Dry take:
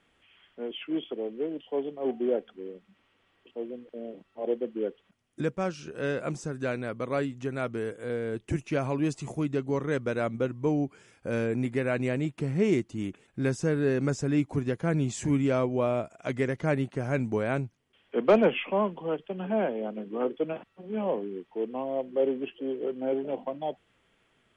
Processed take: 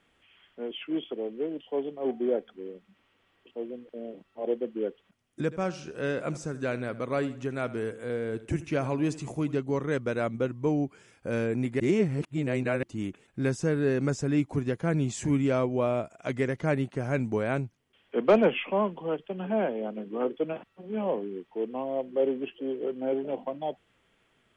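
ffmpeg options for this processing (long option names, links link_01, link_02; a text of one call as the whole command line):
ffmpeg -i in.wav -filter_complex "[0:a]asettb=1/sr,asplit=3[link_01][link_02][link_03];[link_01]atrim=end=2.074[link_04];[link_02]atrim=start=2.07:end=2.52,asetpts=PTS-STARTPTS,afade=type=in:duration=0.004:curve=qsin,afade=type=out:start_time=0.446:duration=0.004:curve=qsin,bandreject=frequency=2800:width=11[link_05];[link_03]atrim=start=2.516[link_06];[link_04][link_05]acrossfade=duration=0.004:curve1=hsin:curve2=qsin[link_07];[link_07][link_06]acrossfade=duration=0.004:curve1=qsin:curve2=hsin,asettb=1/sr,asplit=3[link_08][link_09][link_10];[link_08]atrim=end=5.434[link_11];[link_09]atrim=start=5.43:end=9.58,asetpts=PTS-STARTPTS,afade=type=in:duration=0.004:curve=qsin,afade=type=out:start_time=4.146:duration=0.004:curve=qsin,aecho=1:1:81|162|243:0.15|0.0584|0.0228,atrim=end_sample=183015[link_12];[link_10]atrim=start=9.576[link_13];[link_11][link_12]acrossfade=duration=0.004:curve1=hsin:curve2=qsin[link_14];[link_14][link_13]acrossfade=duration=0.004:curve1=qsin:curve2=hsin,asplit=3[link_15][link_16][link_17];[link_15]atrim=end=11.802[link_18];[link_16]atrim=start=11.798:end=12.832,asetpts=PTS-STARTPTS,areverse[link_19];[link_17]atrim=start=12.828[link_20];[link_18][link_19]acrossfade=duration=0.004:curve1=hsin:curve2=hsin[link_21];[link_21][link_20]acrossfade=duration=0.004:curve1=hsin:curve2=hsin" out.wav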